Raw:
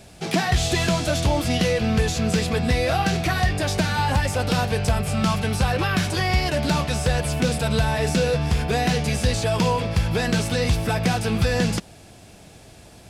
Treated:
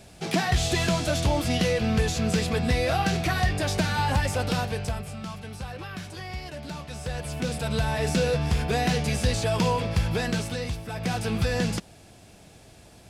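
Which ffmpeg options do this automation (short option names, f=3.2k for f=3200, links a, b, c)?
-af "volume=18.5dB,afade=t=out:st=4.34:d=0.86:silence=0.251189,afade=t=in:st=6.83:d=1.34:silence=0.251189,afade=t=out:st=10.05:d=0.81:silence=0.281838,afade=t=in:st=10.86:d=0.34:silence=0.334965"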